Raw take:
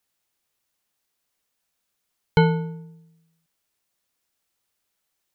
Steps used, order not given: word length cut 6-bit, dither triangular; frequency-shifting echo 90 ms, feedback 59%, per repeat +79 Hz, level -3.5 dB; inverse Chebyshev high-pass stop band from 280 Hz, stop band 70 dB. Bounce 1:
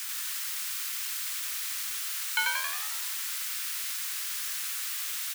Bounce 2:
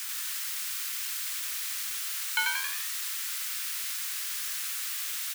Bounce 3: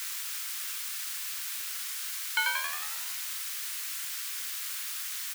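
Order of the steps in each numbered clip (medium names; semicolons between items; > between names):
word length cut > frequency-shifting echo > inverse Chebyshev high-pass; word length cut > inverse Chebyshev high-pass > frequency-shifting echo; frequency-shifting echo > word length cut > inverse Chebyshev high-pass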